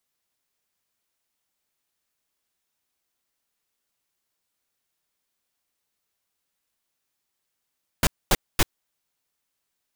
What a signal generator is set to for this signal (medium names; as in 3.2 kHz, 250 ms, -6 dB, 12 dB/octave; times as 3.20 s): noise bursts pink, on 0.04 s, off 0.24 s, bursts 3, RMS -17.5 dBFS